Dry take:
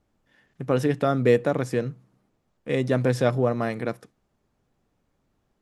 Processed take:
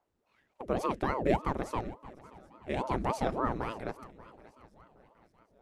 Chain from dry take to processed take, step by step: shuffle delay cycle 773 ms, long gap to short 3:1, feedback 39%, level -20.5 dB; ring modulator with a swept carrier 430 Hz, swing 85%, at 3.5 Hz; trim -6 dB

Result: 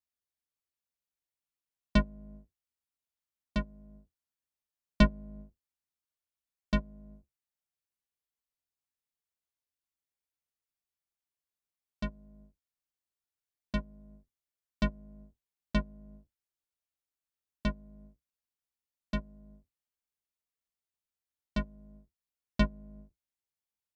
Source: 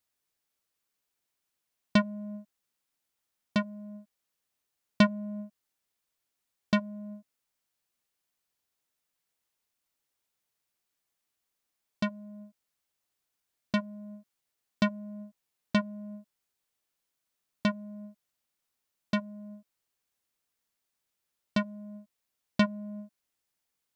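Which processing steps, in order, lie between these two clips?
octave divider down 2 oct, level +2 dB; upward expansion 1.5:1, over -35 dBFS; trim -2.5 dB

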